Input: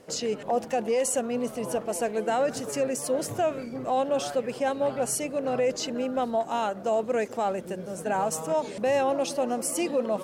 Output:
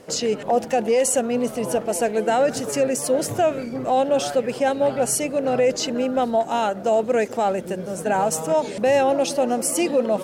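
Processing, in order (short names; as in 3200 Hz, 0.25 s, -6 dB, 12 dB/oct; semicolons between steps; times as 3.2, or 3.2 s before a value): dynamic EQ 1100 Hz, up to -7 dB, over -51 dBFS, Q 6.6; gain +6.5 dB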